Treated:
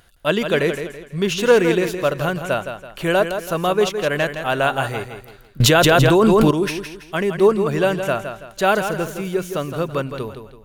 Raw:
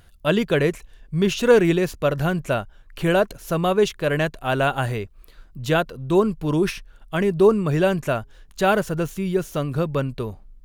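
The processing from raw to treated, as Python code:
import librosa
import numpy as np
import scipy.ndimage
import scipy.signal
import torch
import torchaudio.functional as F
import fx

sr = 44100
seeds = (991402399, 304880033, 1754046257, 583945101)

y = fx.low_shelf(x, sr, hz=240.0, db=-9.5)
y = fx.echo_feedback(y, sr, ms=165, feedback_pct=36, wet_db=-8.5)
y = fx.env_flatten(y, sr, amount_pct=100, at=(5.6, 6.51))
y = y * 10.0 ** (3.0 / 20.0)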